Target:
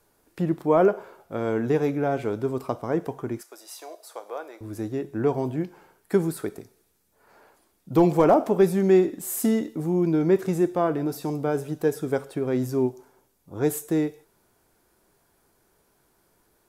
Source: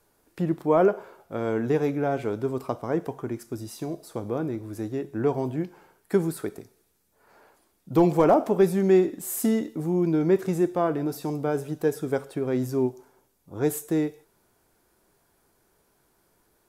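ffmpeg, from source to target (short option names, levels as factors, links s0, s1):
-filter_complex "[0:a]asettb=1/sr,asplit=3[s0][s1][s2];[s0]atrim=end=3.414[s3];[s1]atrim=start=3.41:end=4.61,asetpts=PTS-STARTPTS,afade=t=in:d=0.004:c=qsin,afade=t=out:st=1.196:d=0.004:c=qsin,highpass=f=560:w=0.5412,highpass=f=560:w=1.3066[s4];[s2]atrim=start=4.606[s5];[s3][s4]acrossfade=d=0.004:c1=hsin:c2=qsin[s6];[s6][s5]acrossfade=d=0.004:c1=qsin:c2=hsin,volume=1.12"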